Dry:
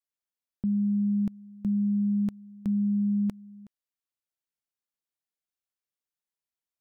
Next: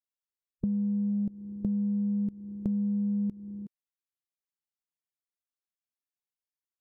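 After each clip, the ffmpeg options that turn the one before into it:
-af "afwtdn=0.0126,acompressor=threshold=0.0158:ratio=6,volume=2.51"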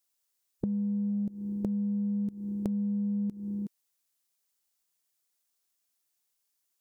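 -af "lowshelf=f=65:g=-12,acompressor=threshold=0.0158:ratio=6,bass=f=250:g=-2,treble=f=4000:g=9,volume=2.66"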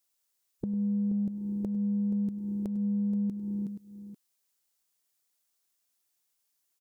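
-filter_complex "[0:a]alimiter=limit=0.1:level=0:latency=1:release=190,asplit=2[s0][s1];[s1]aecho=0:1:99|477:0.15|0.251[s2];[s0][s2]amix=inputs=2:normalize=0,volume=1.12"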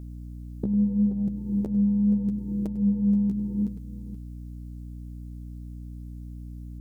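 -af "flanger=delay=6.1:depth=9.8:regen=18:speed=0.77:shape=sinusoidal,aeval=exprs='val(0)+0.00501*(sin(2*PI*60*n/s)+sin(2*PI*2*60*n/s)/2+sin(2*PI*3*60*n/s)/3+sin(2*PI*4*60*n/s)/4+sin(2*PI*5*60*n/s)/5)':c=same,volume=2.82"

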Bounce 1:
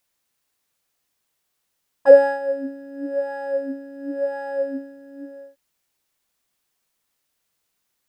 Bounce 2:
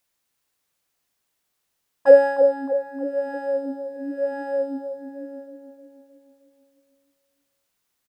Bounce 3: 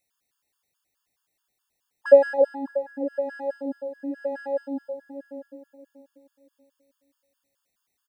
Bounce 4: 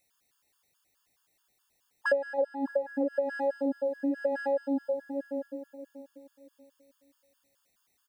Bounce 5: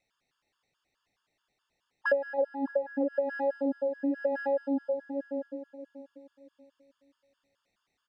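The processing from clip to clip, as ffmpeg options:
-filter_complex "[0:a]asplit=2[s0][s1];[s1]adelay=310,lowpass=f=2300:p=1,volume=0.422,asplit=2[s2][s3];[s3]adelay=310,lowpass=f=2300:p=1,volume=0.54,asplit=2[s4][s5];[s5]adelay=310,lowpass=f=2300:p=1,volume=0.54,asplit=2[s6][s7];[s7]adelay=310,lowpass=f=2300:p=1,volume=0.54,asplit=2[s8][s9];[s9]adelay=310,lowpass=f=2300:p=1,volume=0.54,asplit=2[s10][s11];[s11]adelay=310,lowpass=f=2300:p=1,volume=0.54,asplit=2[s12][s13];[s13]adelay=310,lowpass=f=2300:p=1,volume=0.54[s14];[s0][s2][s4][s6][s8][s10][s12][s14]amix=inputs=8:normalize=0,volume=0.891"
-af "afftfilt=real='re*gt(sin(2*PI*4.7*pts/sr)*(1-2*mod(floor(b*sr/1024/900),2)),0)':imag='im*gt(sin(2*PI*4.7*pts/sr)*(1-2*mod(floor(b*sr/1024/900),2)),0)':win_size=1024:overlap=0.75"
-af "acompressor=threshold=0.0355:ratio=10,volume=1.68"
-af "lowpass=3900"

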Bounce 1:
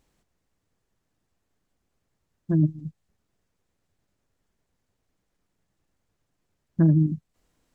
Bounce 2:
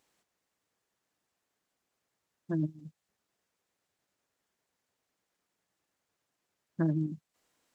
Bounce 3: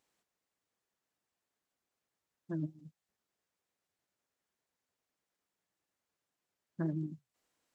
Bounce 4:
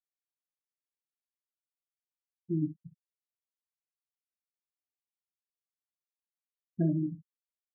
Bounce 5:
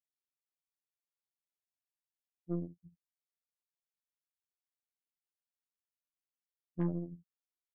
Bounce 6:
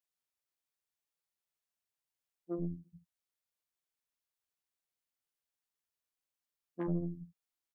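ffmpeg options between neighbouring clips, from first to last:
-af "highpass=f=650:p=1"
-af "flanger=delay=1:depth=4.5:regen=-86:speed=1.7:shape=triangular,volume=0.841"
-filter_complex "[0:a]afftfilt=real='re*gte(hypot(re,im),0.0355)':imag='im*gte(hypot(re,im),0.0355)':win_size=1024:overlap=0.75,asplit=2[s0][s1];[s1]aecho=0:1:23|61:0.299|0.211[s2];[s0][s2]amix=inputs=2:normalize=0,volume=2.24"
-af "afftfilt=real='hypot(re,im)*cos(PI*b)':imag='0':win_size=2048:overlap=0.75,aeval=exprs='0.106*(cos(1*acos(clip(val(0)/0.106,-1,1)))-cos(1*PI/2))+0.0075*(cos(6*acos(clip(val(0)/0.106,-1,1)))-cos(6*PI/2))+0.00422*(cos(7*acos(clip(val(0)/0.106,-1,1)))-cos(7*PI/2))':c=same,volume=0.708"
-filter_complex "[0:a]acrossover=split=240[s0][s1];[s0]adelay=90[s2];[s2][s1]amix=inputs=2:normalize=0,volume=1.33"

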